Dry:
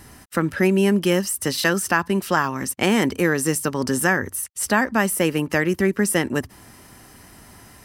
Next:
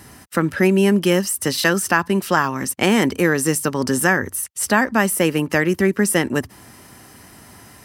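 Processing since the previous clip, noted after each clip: HPF 71 Hz; gain +2.5 dB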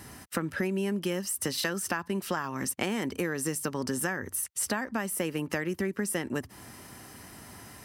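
compressor, threshold -24 dBFS, peak gain reduction 13.5 dB; gain -3.5 dB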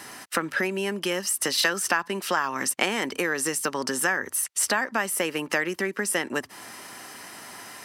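weighting filter A; gain +8 dB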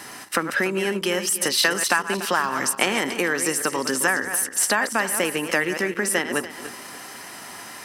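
regenerating reverse delay 0.145 s, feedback 52%, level -9.5 dB; gain +3 dB

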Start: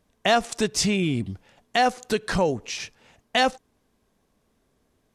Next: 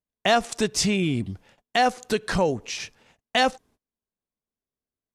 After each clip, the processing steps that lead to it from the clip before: gate -54 dBFS, range -27 dB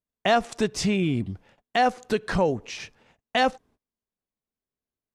high shelf 3800 Hz -9.5 dB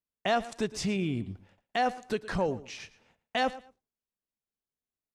feedback echo 0.114 s, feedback 22%, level -18 dB; gain -6.5 dB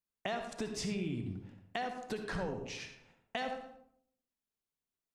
compressor, threshold -33 dBFS, peak gain reduction 10.5 dB; reverb RT60 0.65 s, pre-delay 55 ms, DRR 5 dB; gain -2 dB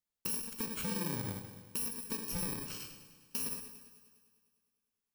FFT order left unsorted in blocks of 64 samples; multi-head echo 0.101 s, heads first and second, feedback 58%, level -18.5 dB

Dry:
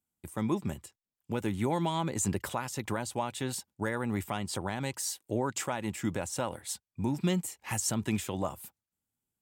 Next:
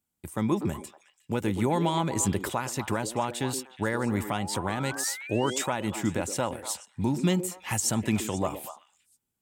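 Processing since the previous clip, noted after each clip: painted sound rise, 4.33–5.66, 700–3900 Hz -45 dBFS; delay with a stepping band-pass 0.121 s, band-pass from 360 Hz, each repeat 1.4 oct, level -6 dB; gain +4 dB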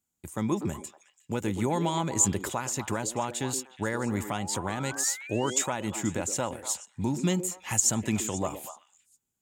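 bell 6900 Hz +11.5 dB 0.24 oct; gain -2 dB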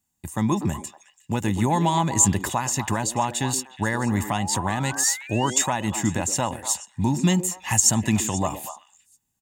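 comb 1.1 ms, depth 49%; gain +5.5 dB

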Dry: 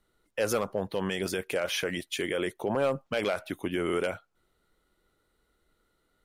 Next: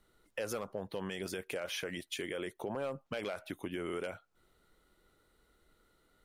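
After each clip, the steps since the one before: compressor 2.5:1, threshold -44 dBFS, peak gain reduction 14 dB; gain +2.5 dB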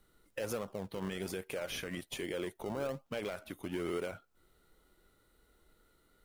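harmonic-percussive split percussive -5 dB; high shelf 10000 Hz +7.5 dB; in parallel at -9.5 dB: decimation with a swept rate 36×, swing 100% 1.2 Hz; on the sum: gain +1 dB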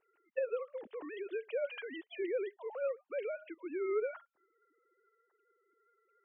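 sine-wave speech; gain +1 dB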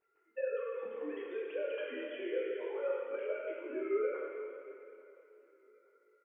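feedback echo 0.856 s, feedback 32%, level -21.5 dB; Schroeder reverb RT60 2.5 s, combs from 27 ms, DRR -3 dB; detuned doubles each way 11 cents

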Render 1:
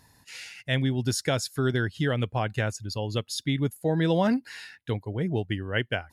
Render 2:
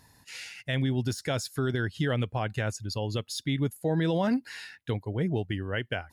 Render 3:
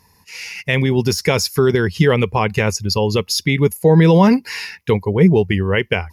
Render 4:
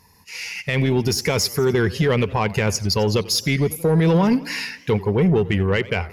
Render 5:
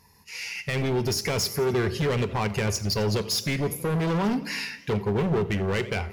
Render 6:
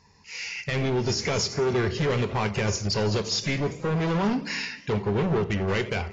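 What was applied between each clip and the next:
de-esser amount 65%; limiter -19 dBFS, peak gain reduction 5.5 dB
AGC gain up to 11.5 dB; ripple EQ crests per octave 0.82, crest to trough 10 dB; gain +2.5 dB
limiter -8 dBFS, peak gain reduction 6 dB; soft clip -10.5 dBFS, distortion -19 dB; warbling echo 89 ms, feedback 57%, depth 178 cents, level -19 dB
hard clip -18.5 dBFS, distortion -11 dB; reverb RT60 0.55 s, pre-delay 3 ms, DRR 12 dB; gain -4 dB
AAC 24 kbps 16000 Hz

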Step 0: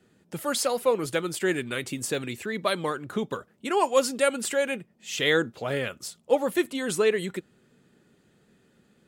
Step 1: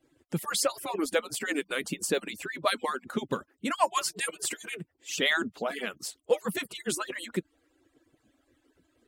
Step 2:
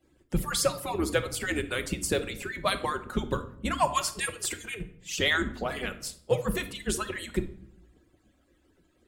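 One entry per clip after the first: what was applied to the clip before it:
median-filter separation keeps percussive; bell 200 Hz +7 dB 1.3 oct
octaver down 2 oct, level 0 dB; reverb RT60 0.65 s, pre-delay 5 ms, DRR 8 dB

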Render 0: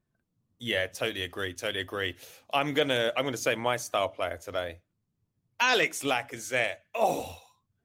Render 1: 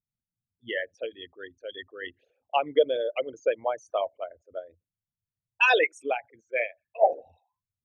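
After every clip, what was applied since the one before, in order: formant sharpening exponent 3; low-pass opened by the level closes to 730 Hz, open at -26 dBFS; upward expander 2.5:1, over -37 dBFS; gain +7.5 dB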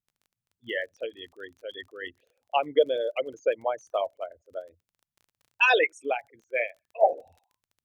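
crackle 30/s -46 dBFS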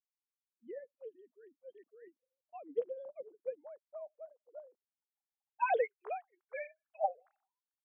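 sine-wave speech; band-pass sweep 200 Hz -> 1400 Hz, 3.73–6.52; gain -1.5 dB

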